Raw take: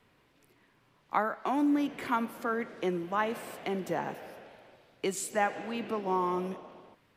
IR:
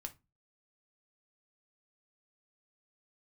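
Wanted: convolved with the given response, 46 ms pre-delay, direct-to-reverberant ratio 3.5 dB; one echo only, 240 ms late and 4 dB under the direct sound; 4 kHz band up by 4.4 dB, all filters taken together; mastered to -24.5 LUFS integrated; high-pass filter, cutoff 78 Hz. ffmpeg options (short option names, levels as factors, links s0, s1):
-filter_complex "[0:a]highpass=78,equalizer=f=4000:t=o:g=6.5,aecho=1:1:240:0.631,asplit=2[s0][s1];[1:a]atrim=start_sample=2205,adelay=46[s2];[s1][s2]afir=irnorm=-1:irlink=0,volume=1.06[s3];[s0][s3]amix=inputs=2:normalize=0,volume=1.78"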